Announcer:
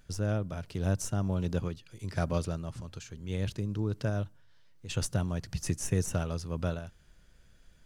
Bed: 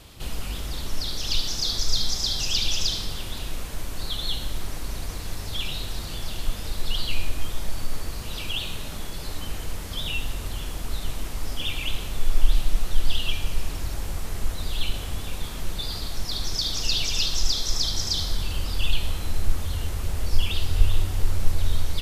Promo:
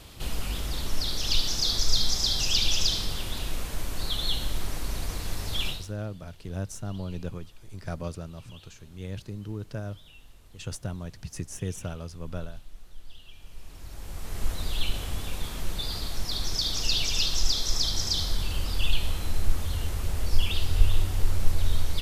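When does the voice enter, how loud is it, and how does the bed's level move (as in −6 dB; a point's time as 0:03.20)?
5.70 s, −4.0 dB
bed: 0:05.69 0 dB
0:05.96 −23.5 dB
0:13.29 −23.5 dB
0:14.46 −1.5 dB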